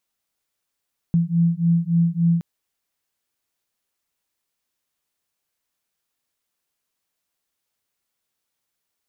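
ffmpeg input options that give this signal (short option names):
-f lavfi -i "aevalsrc='0.112*(sin(2*PI*167*t)+sin(2*PI*170.5*t))':d=1.27:s=44100"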